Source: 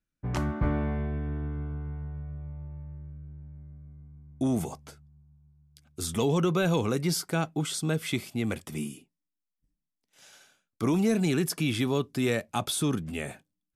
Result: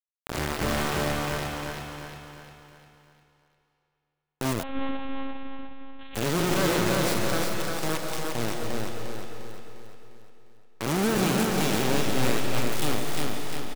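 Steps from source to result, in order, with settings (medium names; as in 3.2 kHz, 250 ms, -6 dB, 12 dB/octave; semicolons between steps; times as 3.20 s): spectral blur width 128 ms; in parallel at +2 dB: compression 8:1, threshold -39 dBFS, peak gain reduction 16 dB; on the sum: bit crusher 4-bit; feedback delay 352 ms, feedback 47%, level -4 dB; on a send at -2.5 dB: reverberation RT60 2.8 s, pre-delay 100 ms; 4.63–6.15 s: on the sum: monotone LPC vocoder at 8 kHz 270 Hz; trim -3 dB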